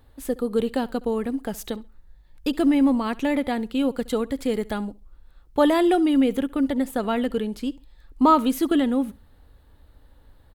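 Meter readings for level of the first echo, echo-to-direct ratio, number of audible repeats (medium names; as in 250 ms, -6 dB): -22.0 dB, -21.5 dB, 2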